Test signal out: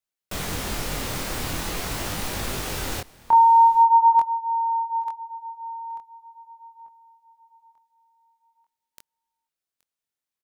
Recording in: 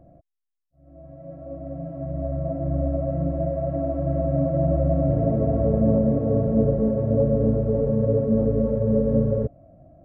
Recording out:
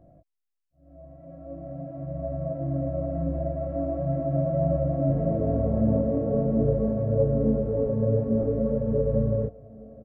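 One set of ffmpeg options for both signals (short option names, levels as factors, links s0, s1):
-af "aecho=1:1:823:0.075,flanger=delay=19.5:depth=6.9:speed=0.43"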